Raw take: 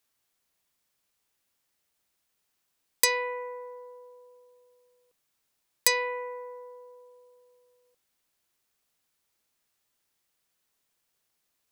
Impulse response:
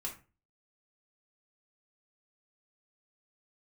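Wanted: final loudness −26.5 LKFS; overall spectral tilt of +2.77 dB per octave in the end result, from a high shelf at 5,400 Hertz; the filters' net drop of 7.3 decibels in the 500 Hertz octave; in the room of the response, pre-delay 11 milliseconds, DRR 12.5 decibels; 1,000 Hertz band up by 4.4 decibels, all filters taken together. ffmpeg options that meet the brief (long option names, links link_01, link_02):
-filter_complex "[0:a]equalizer=frequency=500:width_type=o:gain=-8.5,equalizer=frequency=1000:width_type=o:gain=6,highshelf=frequency=5400:gain=5,asplit=2[link_01][link_02];[1:a]atrim=start_sample=2205,adelay=11[link_03];[link_02][link_03]afir=irnorm=-1:irlink=0,volume=-12.5dB[link_04];[link_01][link_04]amix=inputs=2:normalize=0,volume=-2.5dB"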